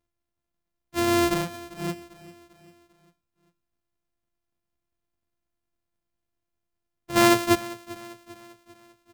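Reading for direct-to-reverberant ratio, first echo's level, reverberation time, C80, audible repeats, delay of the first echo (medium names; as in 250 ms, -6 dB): no reverb, -18.5 dB, no reverb, no reverb, 3, 396 ms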